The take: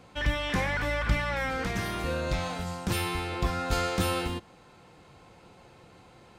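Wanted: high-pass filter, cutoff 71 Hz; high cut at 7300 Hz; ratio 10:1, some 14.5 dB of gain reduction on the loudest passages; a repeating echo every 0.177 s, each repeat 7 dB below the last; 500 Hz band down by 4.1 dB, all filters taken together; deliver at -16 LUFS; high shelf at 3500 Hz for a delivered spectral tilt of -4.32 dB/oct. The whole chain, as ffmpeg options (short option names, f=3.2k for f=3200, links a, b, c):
-af "highpass=71,lowpass=7.3k,equalizer=f=500:t=o:g=-5,highshelf=f=3.5k:g=3,acompressor=threshold=-39dB:ratio=10,aecho=1:1:177|354|531|708|885:0.447|0.201|0.0905|0.0407|0.0183,volume=25dB"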